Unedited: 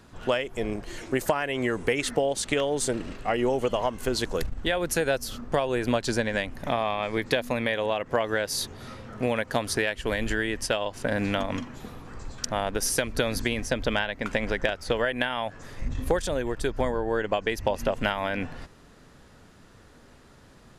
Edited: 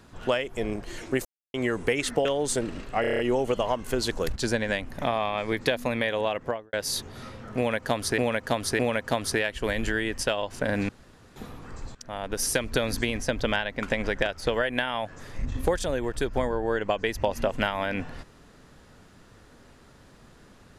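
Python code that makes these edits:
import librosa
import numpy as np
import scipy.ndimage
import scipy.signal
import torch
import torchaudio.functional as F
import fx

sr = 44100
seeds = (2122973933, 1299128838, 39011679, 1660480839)

y = fx.studio_fade_out(x, sr, start_s=8.01, length_s=0.37)
y = fx.edit(y, sr, fx.silence(start_s=1.25, length_s=0.29),
    fx.cut(start_s=2.25, length_s=0.32),
    fx.stutter(start_s=3.33, slice_s=0.03, count=7),
    fx.cut(start_s=4.5, length_s=1.51),
    fx.repeat(start_s=9.22, length_s=0.61, count=3),
    fx.room_tone_fill(start_s=11.32, length_s=0.47),
    fx.fade_in_from(start_s=12.38, length_s=0.53, floor_db=-20.5), tone=tone)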